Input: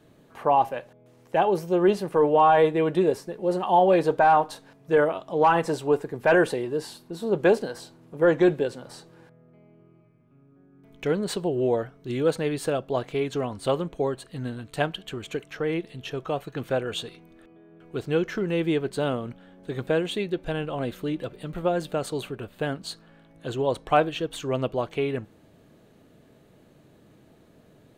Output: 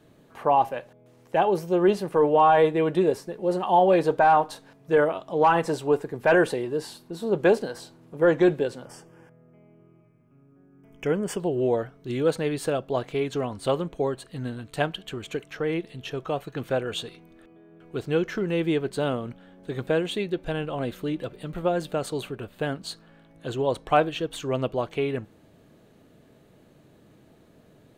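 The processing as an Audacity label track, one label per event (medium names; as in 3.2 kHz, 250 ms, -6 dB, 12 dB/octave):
8.850000	11.400000	Butterworth band-stop 4 kHz, Q 2.3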